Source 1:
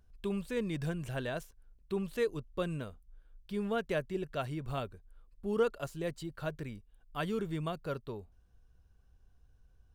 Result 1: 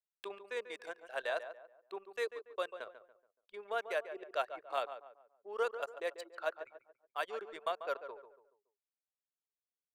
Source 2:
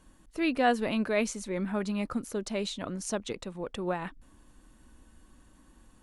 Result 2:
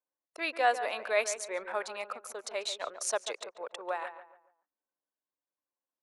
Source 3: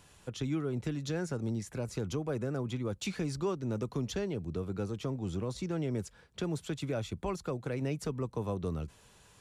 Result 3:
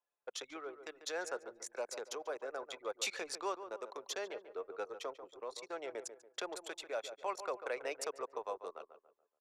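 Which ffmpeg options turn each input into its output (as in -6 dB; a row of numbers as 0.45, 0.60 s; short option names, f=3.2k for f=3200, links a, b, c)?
-filter_complex "[0:a]highpass=f=540:w=0.5412,highpass=f=540:w=1.3066,anlmdn=0.0251,equalizer=f=3k:w=5.9:g=-4.5,tremolo=f=0.64:d=0.36,asplit=2[a][b];[b]adelay=142,lowpass=f=1.7k:p=1,volume=-10dB,asplit=2[c][d];[d]adelay=142,lowpass=f=1.7k:p=1,volume=0.38,asplit=2[e][f];[f]adelay=142,lowpass=f=1.7k:p=1,volume=0.38,asplit=2[g][h];[h]adelay=142,lowpass=f=1.7k:p=1,volume=0.38[i];[c][e][g][i]amix=inputs=4:normalize=0[j];[a][j]amix=inputs=2:normalize=0,volume=4dB"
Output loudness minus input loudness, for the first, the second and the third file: -3.5, -2.0, -6.5 LU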